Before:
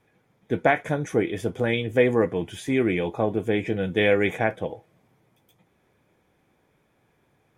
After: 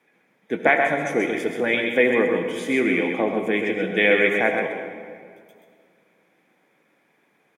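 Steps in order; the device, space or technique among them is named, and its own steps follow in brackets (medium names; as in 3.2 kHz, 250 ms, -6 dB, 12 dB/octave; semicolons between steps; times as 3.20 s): PA in a hall (high-pass 190 Hz 24 dB/octave; peaking EQ 2.1 kHz +7.5 dB 0.72 oct; delay 130 ms -6 dB; reverberation RT60 2.1 s, pre-delay 65 ms, DRR 6.5 dB)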